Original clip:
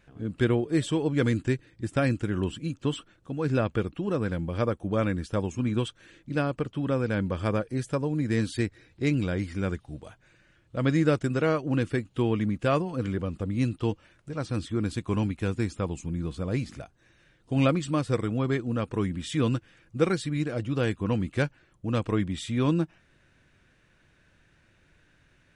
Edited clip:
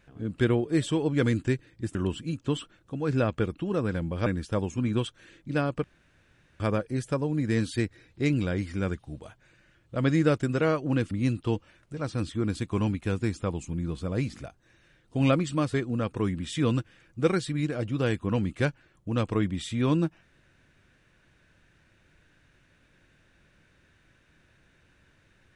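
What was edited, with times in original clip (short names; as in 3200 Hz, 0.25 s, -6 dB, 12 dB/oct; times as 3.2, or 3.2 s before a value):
1.95–2.32 cut
4.63–5.07 cut
6.65–7.41 room tone
11.92–13.47 cut
18.1–18.51 cut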